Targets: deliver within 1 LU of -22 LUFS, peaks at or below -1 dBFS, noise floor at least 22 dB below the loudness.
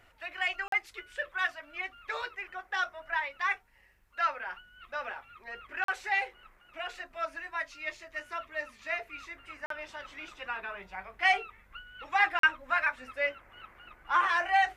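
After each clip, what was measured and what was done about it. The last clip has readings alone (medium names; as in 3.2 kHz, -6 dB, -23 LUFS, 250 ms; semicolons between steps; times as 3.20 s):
dropouts 4; longest dropout 43 ms; loudness -32.0 LUFS; peak level -11.0 dBFS; loudness target -22.0 LUFS
-> interpolate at 0.68/5.84/9.66/12.39 s, 43 ms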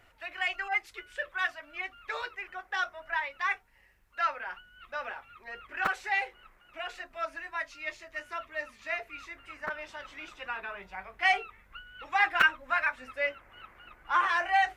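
dropouts 0; loudness -32.0 LUFS; peak level -9.0 dBFS; loudness target -22.0 LUFS
-> trim +10 dB; peak limiter -1 dBFS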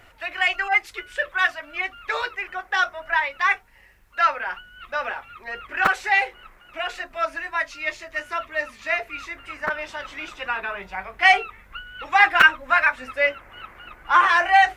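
loudness -22.0 LUFS; peak level -1.0 dBFS; noise floor -52 dBFS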